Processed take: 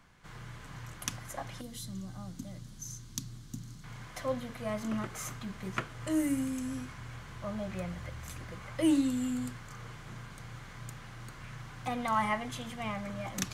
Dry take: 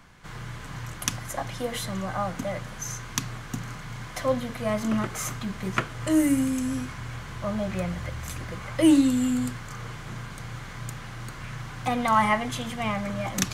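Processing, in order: 1.61–3.84 s: high-order bell 1.1 kHz -15 dB 3 oct; trim -8.5 dB

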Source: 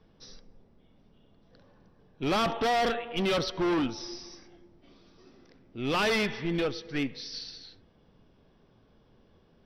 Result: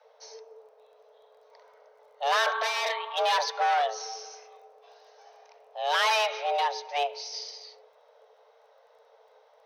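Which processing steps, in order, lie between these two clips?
frequency shift +430 Hz; spectral replace 2.45–3.09 s, 800–1700 Hz both; crackle 15 per s -59 dBFS; trim +2 dB

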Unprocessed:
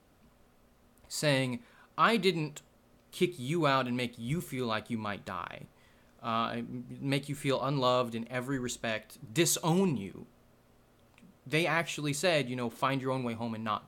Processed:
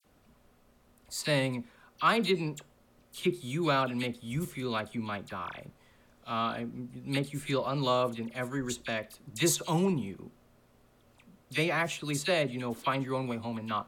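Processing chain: phase dispersion lows, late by 48 ms, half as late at 2.1 kHz

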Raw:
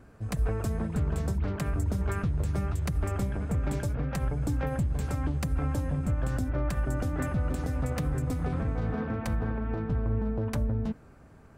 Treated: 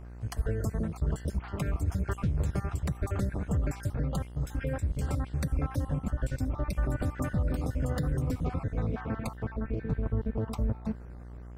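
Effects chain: random holes in the spectrogram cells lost 40%; mains buzz 60 Hz, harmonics 35, -44 dBFS -8 dB/octave

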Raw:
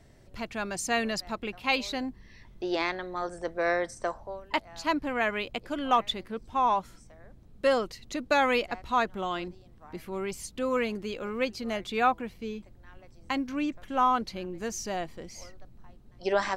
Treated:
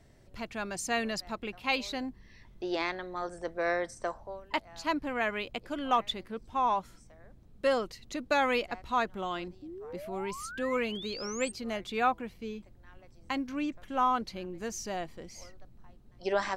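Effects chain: painted sound rise, 9.62–11.52 s, 290–8700 Hz -40 dBFS; trim -3 dB

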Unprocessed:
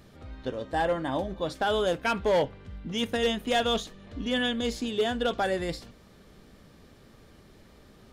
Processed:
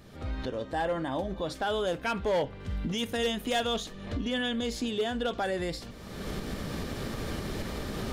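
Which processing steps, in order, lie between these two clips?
recorder AGC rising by 33 dB/s; peak limiter -22.5 dBFS, peak gain reduction 5 dB; 2.60–3.67 s: treble shelf 5.9 kHz +6.5 dB

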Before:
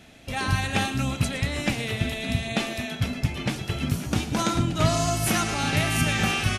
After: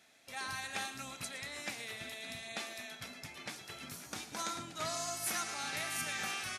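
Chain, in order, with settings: high-pass 1.4 kHz 6 dB/octave; peaking EQ 2.9 kHz -7.5 dB 0.45 oct; trim -8 dB

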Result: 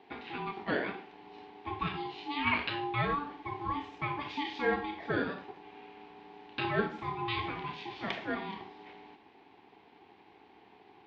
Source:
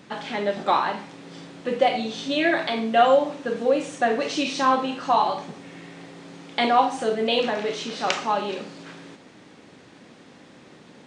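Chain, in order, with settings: 2.46–2.95 s: peaking EQ 2.6 kHz +9.5 dB -> +2 dB 1.9 oct; ring modulator 580 Hz; cabinet simulation 120–3700 Hz, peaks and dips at 140 Hz -6 dB, 420 Hz +5 dB, 730 Hz +4 dB, 1.3 kHz -9 dB, 2.2 kHz +3 dB; trim -7.5 dB

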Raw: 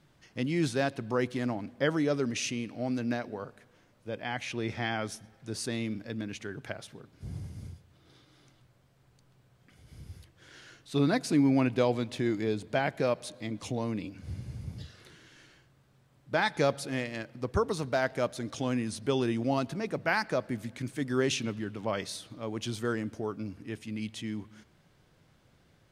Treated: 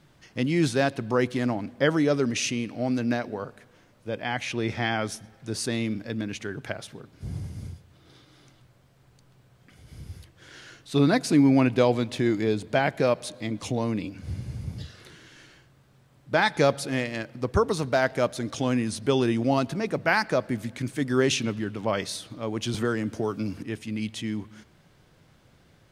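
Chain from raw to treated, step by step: 22.74–23.63 s: three bands compressed up and down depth 70%; trim +5.5 dB

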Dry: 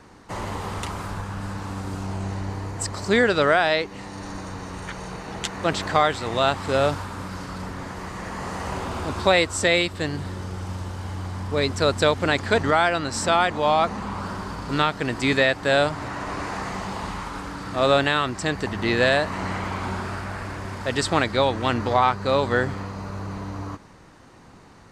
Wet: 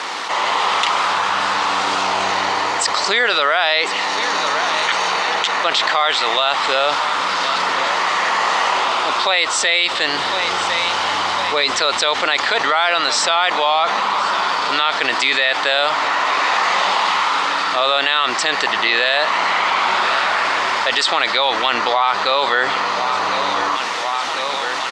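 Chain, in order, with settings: peaking EQ 3.4 kHz +5 dB 0.58 oct; bit crusher 9-bit; Bessel low-pass 4.7 kHz, order 4; peaking EQ 1.6 kHz -5.5 dB 0.21 oct; feedback delay 1053 ms, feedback 54%, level -22 dB; level rider gain up to 10 dB; high-pass 930 Hz 12 dB/octave; loudness maximiser +10 dB; level flattener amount 70%; trim -5.5 dB

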